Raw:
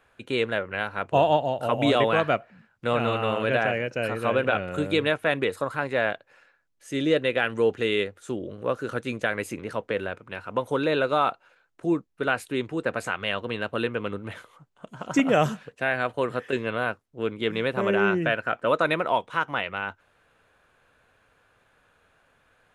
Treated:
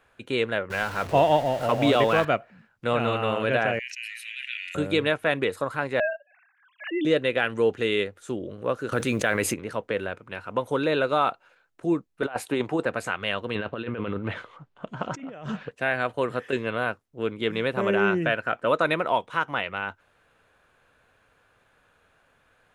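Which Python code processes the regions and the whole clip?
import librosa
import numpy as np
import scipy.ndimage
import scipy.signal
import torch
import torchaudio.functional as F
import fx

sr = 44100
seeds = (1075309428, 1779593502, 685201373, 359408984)

y = fx.chain(x, sr, fx.zero_step(step_db=-32.0),
    fx.high_shelf(hz=7900.0, db=-5.0), at=(0.7, 2.25))
y = fx.chain(y, sr, fx.cheby1_highpass(hz=1900.0, order=6),
    fx.high_shelf(hz=8300.0, db=-6.5),
    fx.sustainer(db_per_s=30.0), at=(3.79, 4.75))
y = fx.chain(y, sr, fx.sine_speech(),
    fx.pre_swell(db_per_s=110.0), at=(6.0, 7.05))
y = fx.chain(y, sr, fx.quant_companded(bits=8),
    fx.env_flatten(amount_pct=70), at=(8.92, 9.54))
y = fx.chain(y, sr, fx.highpass(hz=110.0, slope=12),
    fx.peak_eq(hz=790.0, db=10.5, octaves=0.98),
    fx.over_compress(threshold_db=-25.0, ratio=-0.5), at=(12.22, 12.86))
y = fx.chain(y, sr, fx.lowpass(hz=3700.0, slope=12),
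    fx.over_compress(threshold_db=-33.0, ratio=-1.0), at=(13.55, 15.71))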